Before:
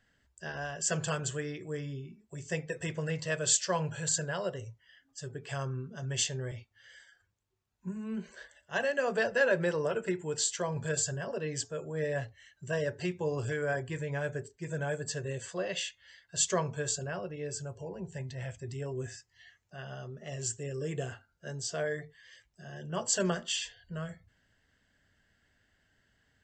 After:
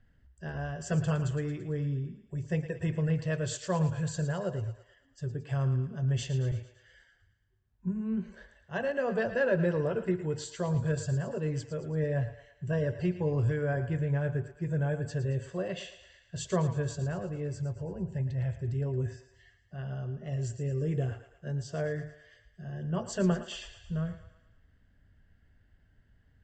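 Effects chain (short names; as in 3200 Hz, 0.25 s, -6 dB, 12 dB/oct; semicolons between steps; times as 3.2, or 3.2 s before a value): RIAA curve playback; thinning echo 0.112 s, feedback 55%, high-pass 470 Hz, level -11 dB; gain -2.5 dB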